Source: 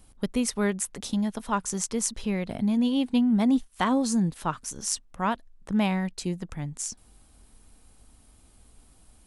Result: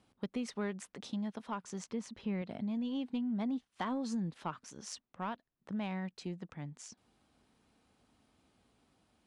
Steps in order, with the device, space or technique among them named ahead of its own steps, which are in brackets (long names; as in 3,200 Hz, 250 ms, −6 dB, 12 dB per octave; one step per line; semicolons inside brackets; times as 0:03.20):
AM radio (band-pass filter 140–4,200 Hz; downward compressor, threshold −25 dBFS, peak gain reduction 6.5 dB; soft clipping −18.5 dBFS, distortion −25 dB; amplitude tremolo 0.25 Hz, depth 19%)
0:01.84–0:02.42: bass and treble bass +5 dB, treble −7 dB
level −6.5 dB